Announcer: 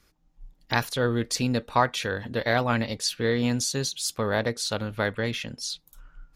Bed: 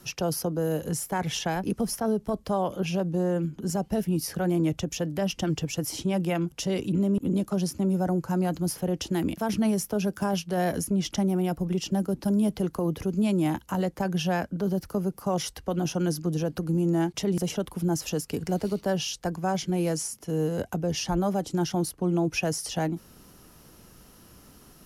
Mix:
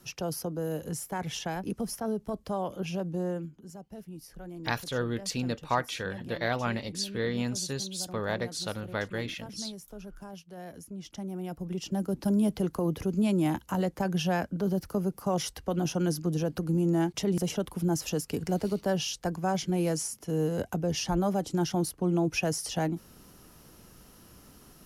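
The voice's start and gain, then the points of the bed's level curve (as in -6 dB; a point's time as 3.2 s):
3.95 s, -6.0 dB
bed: 3.3 s -5.5 dB
3.67 s -17.5 dB
10.77 s -17.5 dB
12.23 s -1.5 dB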